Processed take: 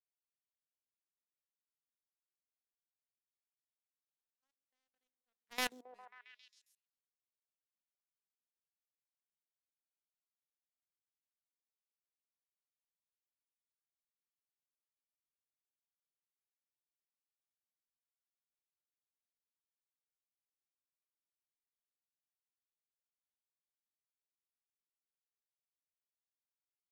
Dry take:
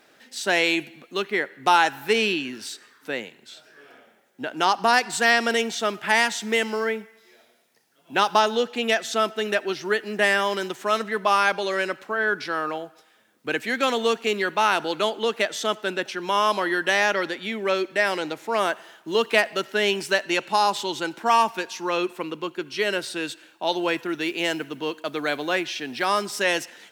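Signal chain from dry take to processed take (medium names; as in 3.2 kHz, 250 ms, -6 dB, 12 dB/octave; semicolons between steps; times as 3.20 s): Doppler pass-by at 5.70 s, 33 m/s, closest 2.5 m; power-law waveshaper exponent 3; level held to a coarse grid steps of 19 dB; repeats whose band climbs or falls 135 ms, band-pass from 320 Hz, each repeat 0.7 oct, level -8.5 dB; trim +4 dB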